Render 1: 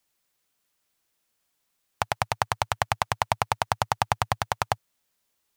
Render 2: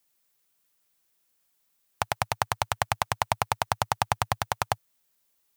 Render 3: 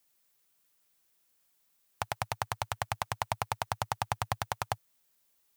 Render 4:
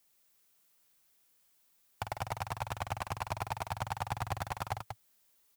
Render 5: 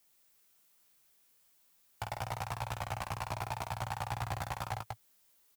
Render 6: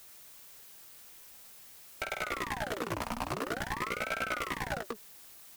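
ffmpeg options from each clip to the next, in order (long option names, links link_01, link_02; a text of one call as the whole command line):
ffmpeg -i in.wav -af "highshelf=frequency=10000:gain=8.5,volume=-1.5dB" out.wav
ffmpeg -i in.wav -af "alimiter=limit=-9.5dB:level=0:latency=1:release=23" out.wav
ffmpeg -i in.wav -filter_complex "[0:a]volume=26dB,asoftclip=hard,volume=-26dB,asplit=2[link_01][link_02];[link_02]aecho=0:1:49.56|186.6:0.398|0.447[link_03];[link_01][link_03]amix=inputs=2:normalize=0,volume=1dB" out.wav
ffmpeg -i in.wav -filter_complex "[0:a]asplit=2[link_01][link_02];[link_02]adelay=17,volume=-9dB[link_03];[link_01][link_03]amix=inputs=2:normalize=0,volume=31dB,asoftclip=hard,volume=-31dB,volume=1dB" out.wav
ffmpeg -i in.wav -af "aeval=exprs='val(0)+0.5*0.00299*sgn(val(0))':channel_layout=same,aeval=exprs='val(0)*sin(2*PI*790*n/s+790*0.85/0.48*sin(2*PI*0.48*n/s))':channel_layout=same,volume=5dB" out.wav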